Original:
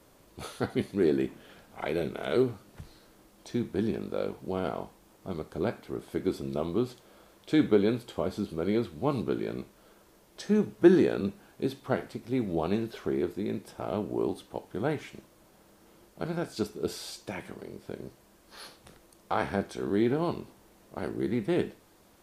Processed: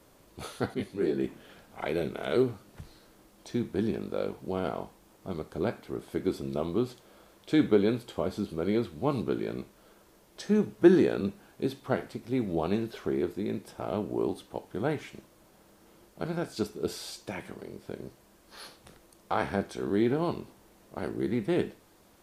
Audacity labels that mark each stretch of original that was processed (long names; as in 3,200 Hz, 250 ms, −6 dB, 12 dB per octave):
0.740000	1.240000	micro pitch shift up and down each way 17 cents